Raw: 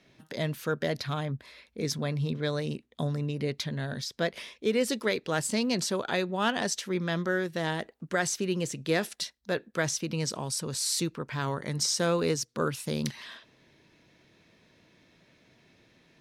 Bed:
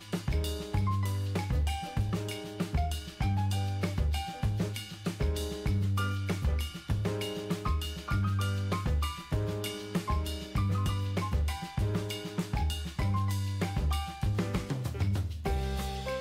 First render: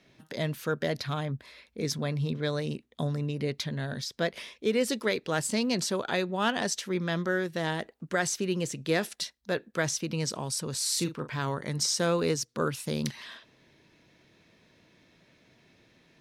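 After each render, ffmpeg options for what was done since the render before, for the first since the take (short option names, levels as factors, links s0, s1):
-filter_complex "[0:a]asettb=1/sr,asplit=3[s0][s1][s2];[s0]atrim=end=10.894[s3];[s1]atrim=start=10.89:end=11.38,asetpts=PTS-STARTPTS,afade=t=in:d=0.004:c=qsin,afade=t=out:st=0.486:d=0.004:c=qsin,asplit=2[s4][s5];[s5]adelay=40,volume=0.316[s6];[s4][s6]amix=inputs=2:normalize=0,atrim=end_sample=21609[s7];[s2]atrim=start=11.376[s8];[s3][s7]acrossfade=d=0.004:c1=hsin:c2=qsin[s9];[s9][s8]acrossfade=d=0.004:c1=qsin:c2=hsin"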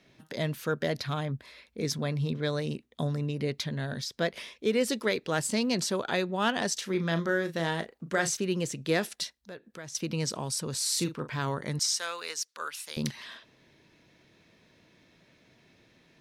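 -filter_complex "[0:a]asettb=1/sr,asplit=3[s0][s1][s2];[s0]atrim=end=6.734[s3];[s1]atrim=start=6.73:end=8.37,asetpts=PTS-STARTPTS,afade=t=in:d=0.004:c=qsin,afade=t=out:st=1.636:d=0.004:c=qsin,asplit=2[s4][s5];[s5]adelay=36,volume=0.355[s6];[s4][s6]amix=inputs=2:normalize=0,atrim=end_sample=72324[s7];[s2]atrim=start=8.366[s8];[s3][s7]acrossfade=d=0.004:c1=hsin:c2=qsin[s9];[s9][s8]acrossfade=d=0.004:c1=qsin:c2=hsin,asettb=1/sr,asplit=3[s10][s11][s12];[s10]atrim=end=9.384[s13];[s11]atrim=start=9.38:end=9.95,asetpts=PTS-STARTPTS,afade=t=in:d=0.004:c=qsin,afade=t=out:st=0.566:d=0.004:c=qsin,acompressor=threshold=0.00282:ratio=2:attack=3.2:release=140:knee=1:detection=peak[s14];[s12]atrim=start=9.946[s15];[s13][s14]acrossfade=d=0.004:c1=hsin:c2=qsin[s16];[s16][s15]acrossfade=d=0.004:c1=qsin:c2=hsin,asettb=1/sr,asplit=3[s17][s18][s19];[s17]atrim=end=11.794[s20];[s18]atrim=start=11.79:end=12.97,asetpts=PTS-STARTPTS,afade=t=in:d=0.004:c=qsin,afade=t=out:st=1.176:d=0.004:c=qsin,highpass=1200[s21];[s19]atrim=start=12.966[s22];[s20][s21]acrossfade=d=0.004:c1=hsin:c2=qsin[s23];[s23][s22]acrossfade=d=0.004:c1=qsin:c2=hsin"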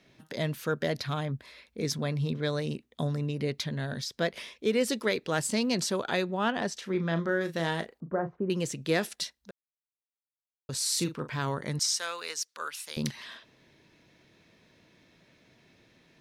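-filter_complex "[0:a]asettb=1/sr,asplit=3[s0][s1][s2];[s0]atrim=end=6.344[s3];[s1]atrim=start=6.34:end=7.41,asetpts=PTS-STARTPTS,afade=t=in:d=0.004:c=qsin,afade=t=out:st=1.066:d=0.004:c=qsin,highshelf=f=3800:g=-12[s4];[s2]atrim=start=7.406[s5];[s3][s4]acrossfade=d=0.004:c1=hsin:c2=qsin[s6];[s6][s5]acrossfade=d=0.004:c1=qsin:c2=hsin,asettb=1/sr,asplit=3[s7][s8][s9];[s7]atrim=end=8.004[s10];[s8]atrim=start=8:end=8.5,asetpts=PTS-STARTPTS,afade=t=in:d=0.004:c=qsin,afade=t=out:st=0.496:d=0.004:c=qsin,lowpass=f=1100:w=0.5412,lowpass=f=1100:w=1.3066[s11];[s9]atrim=start=8.496[s12];[s10][s11]acrossfade=d=0.004:c1=hsin:c2=qsin[s13];[s13][s12]acrossfade=d=0.004:c1=qsin:c2=hsin,asplit=3[s14][s15][s16];[s14]atrim=end=9.51,asetpts=PTS-STARTPTS,afade=t=out:st=9.506:d=0.004:c=hsin[s17];[s15]atrim=start=9.51:end=10.69,asetpts=PTS-STARTPTS,volume=0[s18];[s16]atrim=start=10.69,asetpts=PTS-STARTPTS,afade=t=in:d=0.004:c=hsin[s19];[s17][s18][s19]concat=n=3:v=0:a=1"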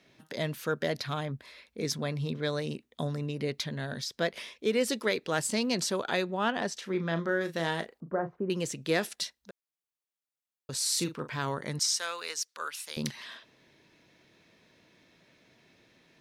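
-af "lowshelf=f=170:g=-6"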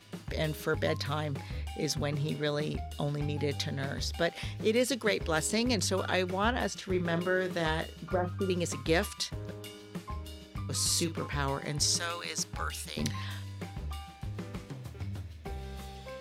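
-filter_complex "[1:a]volume=0.355[s0];[0:a][s0]amix=inputs=2:normalize=0"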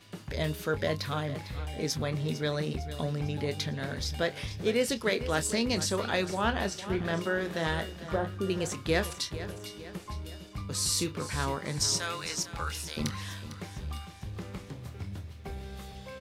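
-filter_complex "[0:a]asplit=2[s0][s1];[s1]adelay=26,volume=0.251[s2];[s0][s2]amix=inputs=2:normalize=0,aecho=1:1:453|906|1359|1812|2265:0.211|0.106|0.0528|0.0264|0.0132"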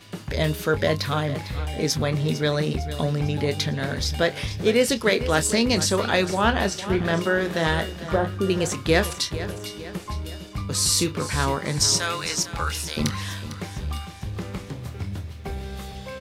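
-af "volume=2.51"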